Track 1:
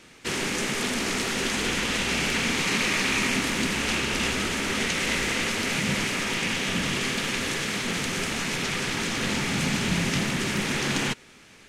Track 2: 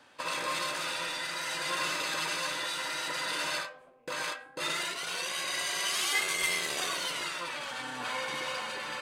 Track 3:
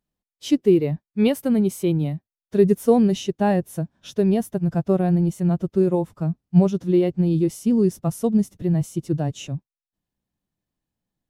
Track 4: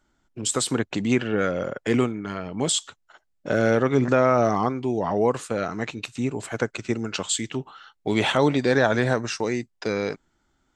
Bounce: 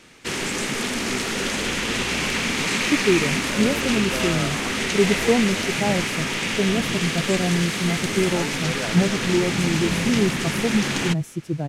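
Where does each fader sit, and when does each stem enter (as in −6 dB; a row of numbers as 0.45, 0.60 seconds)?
+1.5, −6.0, −3.0, −12.0 decibels; 0.00, 1.75, 2.40, 0.00 seconds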